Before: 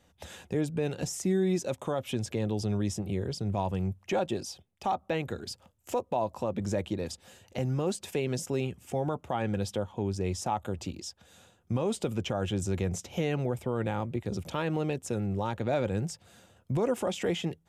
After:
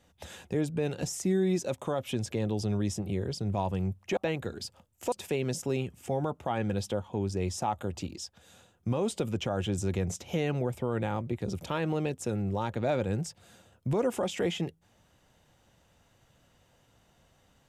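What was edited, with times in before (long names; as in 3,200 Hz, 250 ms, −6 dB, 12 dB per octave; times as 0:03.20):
0:04.17–0:05.03: remove
0:05.98–0:07.96: remove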